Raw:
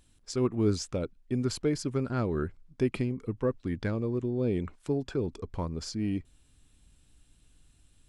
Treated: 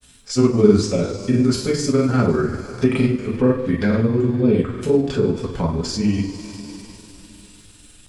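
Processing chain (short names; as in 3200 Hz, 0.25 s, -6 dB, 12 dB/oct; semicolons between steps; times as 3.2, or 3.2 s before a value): two-slope reverb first 0.45 s, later 3.7 s, from -19 dB, DRR -5 dB; grains, spray 32 ms, pitch spread up and down by 0 st; mismatched tape noise reduction encoder only; gain +7 dB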